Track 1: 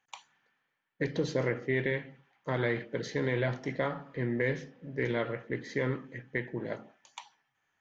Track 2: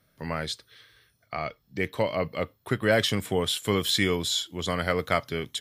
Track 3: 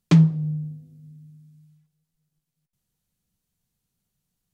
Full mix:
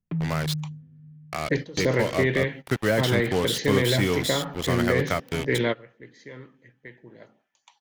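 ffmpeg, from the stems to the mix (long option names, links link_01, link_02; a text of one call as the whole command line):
ffmpeg -i stem1.wav -i stem2.wav -i stem3.wav -filter_complex "[0:a]dynaudnorm=framelen=200:gausssize=5:maxgain=7.5dB,adynamicequalizer=threshold=0.01:dfrequency=2600:dqfactor=0.7:tfrequency=2600:tqfactor=0.7:attack=5:release=100:ratio=0.375:range=3.5:mode=boostabove:tftype=highshelf,adelay=500,volume=0dB[link_01];[1:a]acrusher=bits=4:mix=0:aa=0.5,volume=1.5dB,asplit=2[link_02][link_03];[2:a]lowpass=frequency=2600:width=0.5412,lowpass=frequency=2600:width=1.3066,lowshelf=frequency=270:gain=11,alimiter=limit=-12.5dB:level=0:latency=1,volume=-10dB[link_04];[link_03]apad=whole_len=366400[link_05];[link_01][link_05]sidechaingate=range=-19dB:threshold=-48dB:ratio=16:detection=peak[link_06];[link_06][link_02][link_04]amix=inputs=3:normalize=0,acrossover=split=470[link_07][link_08];[link_08]acompressor=threshold=-23dB:ratio=6[link_09];[link_07][link_09]amix=inputs=2:normalize=0" out.wav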